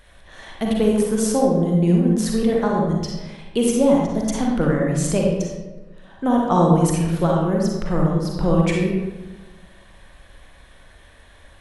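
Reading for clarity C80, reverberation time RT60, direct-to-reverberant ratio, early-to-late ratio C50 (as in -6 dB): 3.0 dB, 1.2 s, -1.5 dB, -0.5 dB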